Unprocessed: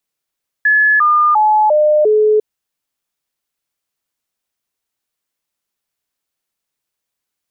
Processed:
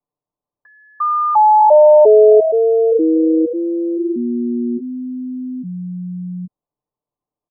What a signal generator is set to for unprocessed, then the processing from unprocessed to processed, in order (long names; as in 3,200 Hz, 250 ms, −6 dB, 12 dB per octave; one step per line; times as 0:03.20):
stepped sweep 1,710 Hz down, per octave 2, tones 5, 0.35 s, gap 0.00 s −8 dBFS
Chebyshev low-pass filter 1,100 Hz, order 5
comb filter 6.8 ms, depth 68%
delay with pitch and tempo change per echo 251 ms, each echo −5 semitones, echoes 3, each echo −6 dB